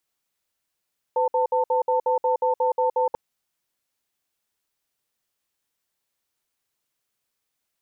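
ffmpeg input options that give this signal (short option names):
-f lavfi -i "aevalsrc='0.0891*(sin(2*PI*506*t)+sin(2*PI*894*t))*clip(min(mod(t,0.18),0.12-mod(t,0.18))/0.005,0,1)':d=1.99:s=44100"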